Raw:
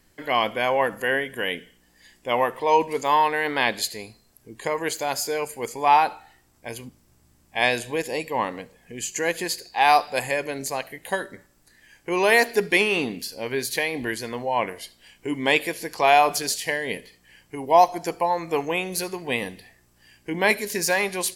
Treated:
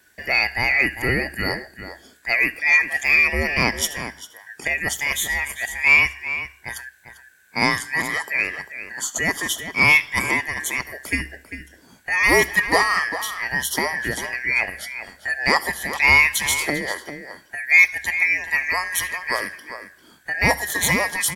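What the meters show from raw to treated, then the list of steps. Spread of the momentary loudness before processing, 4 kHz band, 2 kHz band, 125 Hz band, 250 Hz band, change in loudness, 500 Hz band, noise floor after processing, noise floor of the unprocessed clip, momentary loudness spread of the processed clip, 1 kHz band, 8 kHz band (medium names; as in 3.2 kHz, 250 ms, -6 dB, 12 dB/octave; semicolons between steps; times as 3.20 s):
16 LU, +2.0 dB, +8.5 dB, +6.5 dB, 0.0 dB, +4.0 dB, -5.5 dB, -53 dBFS, -61 dBFS, 19 LU, -5.5 dB, +4.5 dB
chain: four frequency bands reordered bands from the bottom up 2143; treble shelf 8 kHz +4.5 dB; in parallel at -11.5 dB: hard clipper -13.5 dBFS, distortion -13 dB; on the sum: peaking EQ 69 Hz +13 dB 0.2 oct; echo from a far wall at 68 m, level -10 dB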